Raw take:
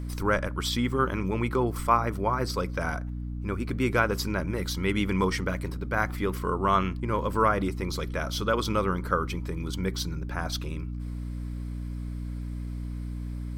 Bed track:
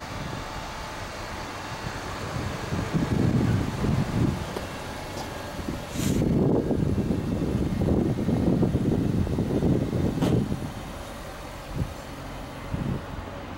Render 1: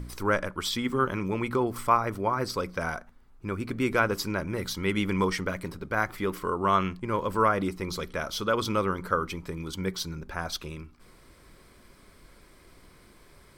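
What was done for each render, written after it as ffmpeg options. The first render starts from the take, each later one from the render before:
-af "bandreject=f=60:t=h:w=4,bandreject=f=120:t=h:w=4,bandreject=f=180:t=h:w=4,bandreject=f=240:t=h:w=4,bandreject=f=300:t=h:w=4"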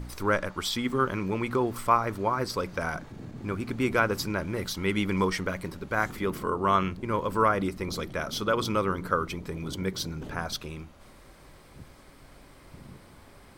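-filter_complex "[1:a]volume=0.112[s0];[0:a][s0]amix=inputs=2:normalize=0"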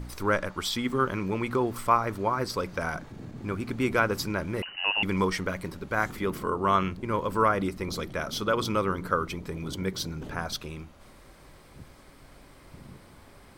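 -filter_complex "[0:a]asettb=1/sr,asplit=3[s0][s1][s2];[s0]atrim=end=4.624[s3];[s1]atrim=start=4.62:end=5.03,asetpts=PTS-STARTPTS,afade=t=in:d=0.004:c=qsin,afade=t=out:st=0.406:d=0.004:c=qsin,lowpass=f=2600:t=q:w=0.5098,lowpass=f=2600:t=q:w=0.6013,lowpass=f=2600:t=q:w=0.9,lowpass=f=2600:t=q:w=2.563,afreqshift=-3000[s4];[s2]atrim=start=5.026[s5];[s3][s4]acrossfade=d=0.004:c1=hsin:c2=qsin[s6];[s6][s5]acrossfade=d=0.004:c1=qsin:c2=hsin"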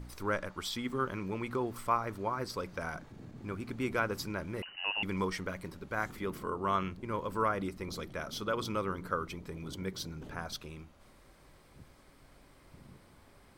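-af "volume=0.422"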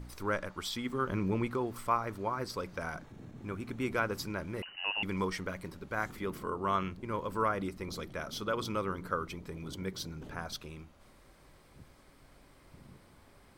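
-filter_complex "[0:a]asettb=1/sr,asplit=3[s0][s1][s2];[s0]atrim=end=1.084[s3];[s1]atrim=start=1.08:end=1.48,asetpts=PTS-STARTPTS,afade=t=in:d=0.004:c=qsin,afade=t=out:st=0.396:d=0.004:c=qsin,lowshelf=f=460:g=8[s4];[s2]atrim=start=1.476[s5];[s3][s4]acrossfade=d=0.004:c1=hsin:c2=qsin[s6];[s6][s5]acrossfade=d=0.004:c1=qsin:c2=hsin,asettb=1/sr,asplit=3[s7][s8][s9];[s7]atrim=end=3.054[s10];[s8]atrim=start=3.05:end=3.85,asetpts=PTS-STARTPTS,afade=t=in:d=0.004:c=qsin,afade=t=out:st=0.796:d=0.004:c=qsin,bandreject=f=4700:w=8.3[s11];[s9]atrim=start=3.846[s12];[s10][s11]acrossfade=d=0.004:c1=hsin:c2=qsin[s13];[s13][s12]acrossfade=d=0.004:c1=qsin:c2=hsin"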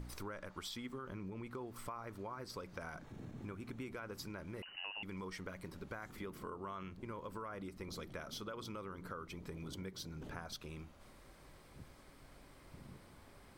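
-af "alimiter=limit=0.0631:level=0:latency=1:release=31,acompressor=threshold=0.00708:ratio=6"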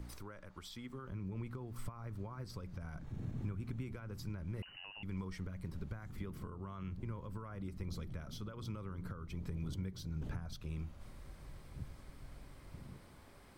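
-filter_complex "[0:a]acrossover=split=160[s0][s1];[s0]dynaudnorm=f=130:g=17:m=3.76[s2];[s1]alimiter=level_in=6.68:limit=0.0631:level=0:latency=1:release=419,volume=0.15[s3];[s2][s3]amix=inputs=2:normalize=0"

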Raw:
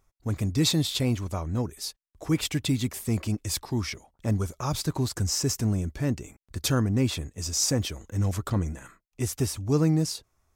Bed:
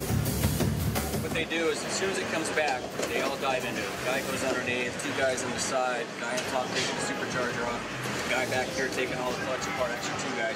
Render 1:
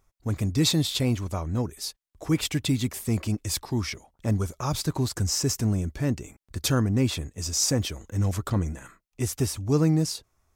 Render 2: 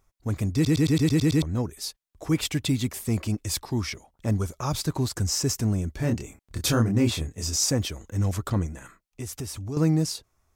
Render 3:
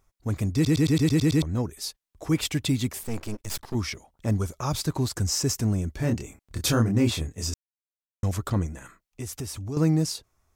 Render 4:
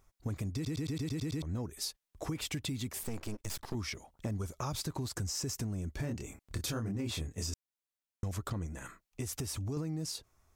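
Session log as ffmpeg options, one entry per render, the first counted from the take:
-af "volume=1.12"
-filter_complex "[0:a]asettb=1/sr,asplit=3[s0][s1][s2];[s0]atrim=end=5.964[s3];[s1]atrim=start=5.96:end=7.56,asetpts=PTS-STARTPTS,afade=t=in:d=0.004:c=qsin,afade=t=out:st=1.596:d=0.004:c=qsin,asplit=2[s4][s5];[s5]adelay=26,volume=0.668[s6];[s4][s6]amix=inputs=2:normalize=0,atrim=end_sample=70560[s7];[s2]atrim=start=7.556[s8];[s3][s7]acrossfade=d=0.004:c1=hsin:c2=qsin[s9];[s9][s8]acrossfade=d=0.004:c1=qsin:c2=hsin,asettb=1/sr,asplit=3[s10][s11][s12];[s10]atrim=end=8.664[s13];[s11]atrim=start=8.66:end=9.77,asetpts=PTS-STARTPTS,afade=t=in:d=0.004:c=qsin,afade=t=out:st=1.106:d=0.004:c=qsin,acompressor=threshold=0.0251:ratio=3:attack=3.2:release=140:knee=1:detection=peak[s14];[s12]atrim=start=9.766[s15];[s13][s14]acrossfade=d=0.004:c1=hsin:c2=qsin[s16];[s16][s15]acrossfade=d=0.004:c1=qsin:c2=hsin,asplit=9[s17][s18][s19][s20][s21][s22][s23][s24][s25];[s17]atrim=end=0.652[s26];[s18]atrim=start=0.538:end=0.652[s27];[s19]atrim=start=0.538:end=0.652[s28];[s20]atrim=start=0.538:end=0.652[s29];[s21]atrim=start=0.538:end=0.652[s30];[s22]atrim=start=0.538:end=0.652[s31];[s23]atrim=start=0.538:end=0.652[s32];[s24]atrim=start=0.538:end=0.652[s33];[s25]atrim=start=1.418[s34];[s26][s27]acrossfade=d=0.004:c1=hsin:c2=hsin[s35];[s35][s28]acrossfade=d=0.004:c1=hsin:c2=hsin[s36];[s36][s29]acrossfade=d=0.004:c1=hsin:c2=hsin[s37];[s37][s30]acrossfade=d=0.004:c1=hsin:c2=hsin[s38];[s38][s31]acrossfade=d=0.004:c1=hsin:c2=hsin[s39];[s39][s32]acrossfade=d=0.004:c1=hsin:c2=hsin[s40];[s40][s33]acrossfade=d=0.004:c1=hsin:c2=hsin[s41];[s41][s34]acrossfade=d=0.004:c1=hsin:c2=hsin"
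-filter_complex "[0:a]asettb=1/sr,asplit=3[s0][s1][s2];[s0]atrim=end=3.034[s3];[s1]atrim=start=3.03:end=3.75,asetpts=PTS-STARTPTS,afade=t=in:d=0.004:c=qsin,afade=t=out:st=0.716:d=0.004:c=qsin,aeval=exprs='max(val(0),0)':c=same[s4];[s2]atrim=start=3.746[s5];[s3][s4]acrossfade=d=0.004:c1=hsin:c2=qsin[s6];[s6][s5]acrossfade=d=0.004:c1=qsin:c2=hsin,asplit=3[s7][s8][s9];[s7]atrim=end=7.54,asetpts=PTS-STARTPTS,afade=t=out:st=7.536:d=0.004:c=hsin[s10];[s8]atrim=start=7.54:end=8.23,asetpts=PTS-STARTPTS,volume=0[s11];[s9]atrim=start=8.23,asetpts=PTS-STARTPTS,afade=t=in:d=0.004:c=hsin[s12];[s10][s11][s12]concat=n=3:v=0:a=1"
-af "alimiter=limit=0.106:level=0:latency=1:release=24,acompressor=threshold=0.02:ratio=6"

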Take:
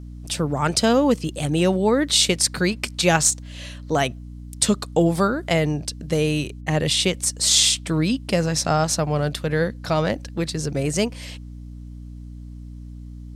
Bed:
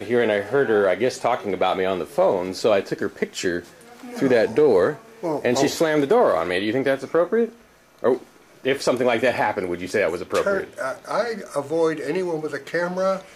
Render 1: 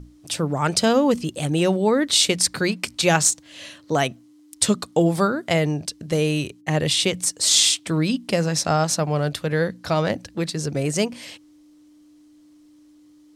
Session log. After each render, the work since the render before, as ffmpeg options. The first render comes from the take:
-af "bandreject=f=60:t=h:w=6,bandreject=f=120:t=h:w=6,bandreject=f=180:t=h:w=6,bandreject=f=240:t=h:w=6"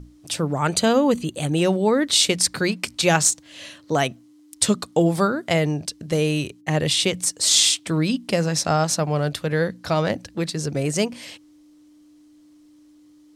-filter_complex "[0:a]asettb=1/sr,asplit=3[s0][s1][s2];[s0]atrim=end=0.574[s3];[s1]atrim=start=0.57:end=1.56,asetpts=PTS-STARTPTS,afade=t=in:d=0.004:c=qsin,afade=t=out:st=0.986:d=0.004:c=qsin,asuperstop=centerf=5300:order=12:qfactor=6.2[s4];[s2]atrim=start=1.556[s5];[s3][s4]acrossfade=d=0.004:c1=hsin:c2=qsin[s6];[s6][s5]acrossfade=d=0.004:c1=qsin:c2=hsin"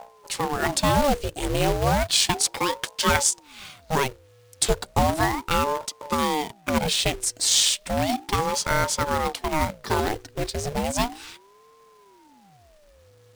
-filter_complex "[0:a]acrossover=split=4800[s0][s1];[s0]acrusher=bits=2:mode=log:mix=0:aa=0.000001[s2];[s2][s1]amix=inputs=2:normalize=0,aeval=exprs='val(0)*sin(2*PI*470*n/s+470*0.6/0.34*sin(2*PI*0.34*n/s))':c=same"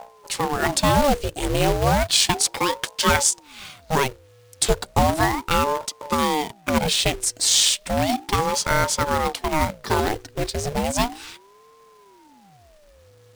-af "volume=1.33,alimiter=limit=0.708:level=0:latency=1"

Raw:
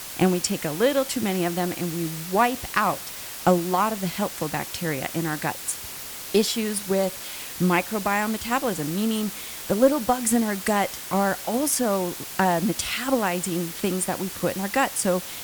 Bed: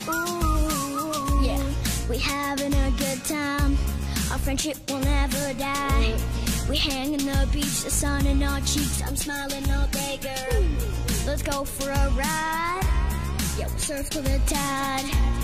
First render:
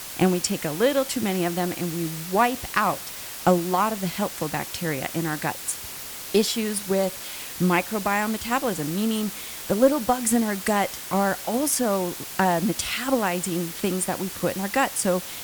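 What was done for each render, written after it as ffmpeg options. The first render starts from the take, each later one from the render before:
-af anull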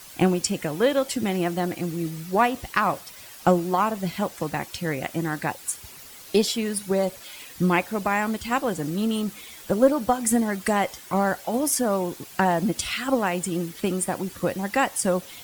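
-af "afftdn=nr=10:nf=-37"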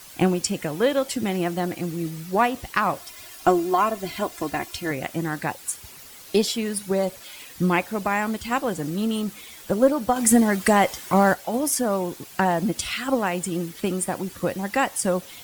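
-filter_complex "[0:a]asettb=1/sr,asplit=3[s0][s1][s2];[s0]atrim=end=3.004[s3];[s1]atrim=start=3:end=4.91,asetpts=PTS-STARTPTS,afade=t=in:d=0.004:c=qsin,afade=t=out:st=1.906:d=0.004:c=qsin,aecho=1:1:2.9:0.65,atrim=end_sample=84231[s4];[s2]atrim=start=4.906[s5];[s3][s4]acrossfade=d=0.004:c1=hsin:c2=qsin[s6];[s6][s5]acrossfade=d=0.004:c1=qsin:c2=hsin,asettb=1/sr,asplit=3[s7][s8][s9];[s7]atrim=end=10.164[s10];[s8]atrim=start=10.16:end=11.34,asetpts=PTS-STARTPTS,afade=t=in:d=0.004:c=qsin,afade=t=out:st=1.176:d=0.004:c=qsin,acontrast=33[s11];[s9]atrim=start=11.336[s12];[s10][s11]acrossfade=d=0.004:c1=hsin:c2=qsin[s13];[s13][s12]acrossfade=d=0.004:c1=qsin:c2=hsin"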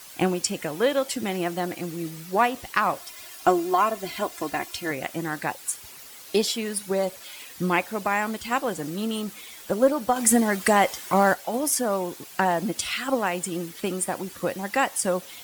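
-af "lowshelf=f=200:g=-9.5"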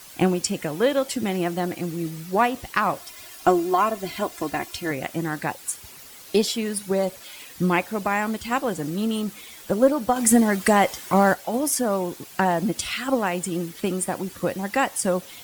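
-af "lowshelf=f=290:g=6.5"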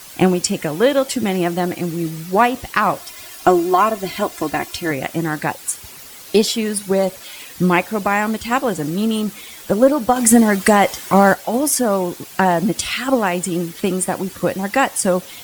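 -af "volume=2,alimiter=limit=0.891:level=0:latency=1"

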